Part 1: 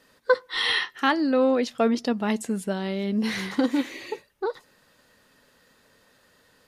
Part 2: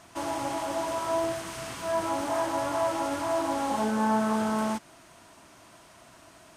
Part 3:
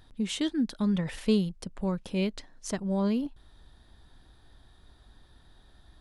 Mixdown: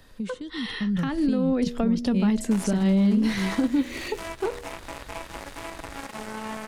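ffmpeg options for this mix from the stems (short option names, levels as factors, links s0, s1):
-filter_complex "[0:a]bandreject=f=79.93:t=h:w=4,bandreject=f=159.86:t=h:w=4,bandreject=f=239.79:t=h:w=4,bandreject=f=319.72:t=h:w=4,bandreject=f=399.65:t=h:w=4,bandreject=f=479.58:t=h:w=4,bandreject=f=559.51:t=h:w=4,bandreject=f=639.44:t=h:w=4,volume=1.12[s0];[1:a]alimiter=level_in=1.41:limit=0.0631:level=0:latency=1:release=407,volume=0.708,aeval=exprs='0.0447*(cos(1*acos(clip(val(0)/0.0447,-1,1)))-cos(1*PI/2))+0.0178*(cos(3*acos(clip(val(0)/0.0447,-1,1)))-cos(3*PI/2))':c=same,adelay=2350,volume=0.562[s1];[2:a]acrossover=split=160|3000[s2][s3][s4];[s3]acompressor=threshold=0.0316:ratio=6[s5];[s2][s5][s4]amix=inputs=3:normalize=0,volume=1.19,asplit=2[s6][s7];[s7]apad=whole_len=393182[s8];[s1][s8]sidechaincompress=threshold=0.0178:ratio=8:attack=16:release=326[s9];[s0][s6]amix=inputs=2:normalize=0,acrossover=split=270[s10][s11];[s11]acompressor=threshold=0.01:ratio=3[s12];[s10][s12]amix=inputs=2:normalize=0,alimiter=limit=0.075:level=0:latency=1:release=156,volume=1[s13];[s9][s13]amix=inputs=2:normalize=0,dynaudnorm=f=220:g=9:m=2.51"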